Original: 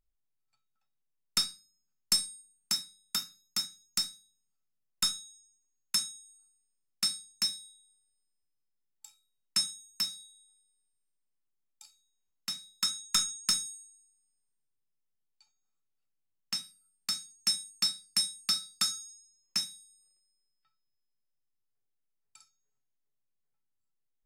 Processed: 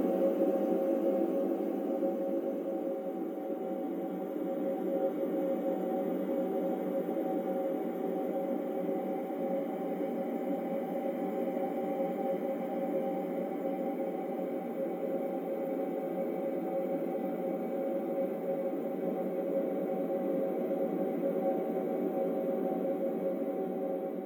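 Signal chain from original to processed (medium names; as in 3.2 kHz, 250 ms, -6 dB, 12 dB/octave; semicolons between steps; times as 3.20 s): spectrum inverted on a logarithmic axis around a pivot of 1.7 kHz; Paulstretch 12×, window 1.00 s, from 2.19 s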